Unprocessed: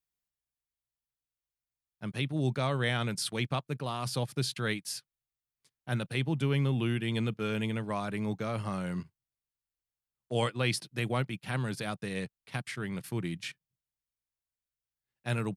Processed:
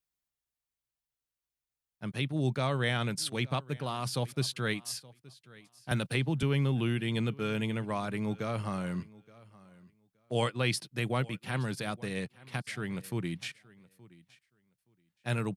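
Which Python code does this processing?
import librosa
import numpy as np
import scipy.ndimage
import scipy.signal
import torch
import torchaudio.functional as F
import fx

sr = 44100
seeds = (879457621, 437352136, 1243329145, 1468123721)

p1 = x + fx.echo_feedback(x, sr, ms=872, feedback_pct=17, wet_db=-22, dry=0)
y = fx.band_squash(p1, sr, depth_pct=100, at=(5.91, 6.43))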